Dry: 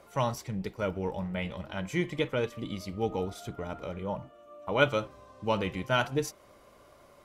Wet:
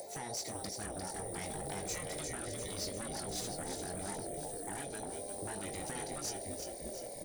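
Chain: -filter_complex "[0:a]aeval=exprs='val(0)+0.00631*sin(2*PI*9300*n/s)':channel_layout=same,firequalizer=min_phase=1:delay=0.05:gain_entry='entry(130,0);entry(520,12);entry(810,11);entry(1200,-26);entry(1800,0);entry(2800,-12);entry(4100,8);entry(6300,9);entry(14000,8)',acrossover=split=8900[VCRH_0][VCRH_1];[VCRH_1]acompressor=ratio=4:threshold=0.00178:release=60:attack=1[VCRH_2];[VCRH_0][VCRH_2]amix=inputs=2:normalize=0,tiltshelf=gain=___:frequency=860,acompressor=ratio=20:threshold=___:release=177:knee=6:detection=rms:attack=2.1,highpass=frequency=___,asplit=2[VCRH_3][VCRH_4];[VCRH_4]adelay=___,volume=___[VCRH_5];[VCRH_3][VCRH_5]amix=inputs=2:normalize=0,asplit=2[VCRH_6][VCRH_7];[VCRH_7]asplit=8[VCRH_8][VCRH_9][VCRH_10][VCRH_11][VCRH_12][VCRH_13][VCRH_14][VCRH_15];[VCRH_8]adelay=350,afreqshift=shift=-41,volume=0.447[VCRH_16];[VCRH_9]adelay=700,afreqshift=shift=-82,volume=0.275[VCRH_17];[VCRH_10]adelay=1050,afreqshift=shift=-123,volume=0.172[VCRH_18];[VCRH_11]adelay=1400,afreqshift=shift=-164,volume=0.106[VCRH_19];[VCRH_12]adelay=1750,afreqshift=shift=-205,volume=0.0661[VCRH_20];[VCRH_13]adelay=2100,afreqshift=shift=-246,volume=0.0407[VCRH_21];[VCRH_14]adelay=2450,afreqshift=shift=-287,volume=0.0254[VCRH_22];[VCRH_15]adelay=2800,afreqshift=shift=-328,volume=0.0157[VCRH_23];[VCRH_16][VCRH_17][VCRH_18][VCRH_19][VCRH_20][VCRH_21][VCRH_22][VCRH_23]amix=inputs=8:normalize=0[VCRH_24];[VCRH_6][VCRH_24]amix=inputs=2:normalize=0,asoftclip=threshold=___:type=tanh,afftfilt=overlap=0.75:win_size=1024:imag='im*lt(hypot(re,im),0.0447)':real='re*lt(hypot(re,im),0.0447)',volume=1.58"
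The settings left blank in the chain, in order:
-3.5, 0.0316, 60, 20, 0.355, 0.02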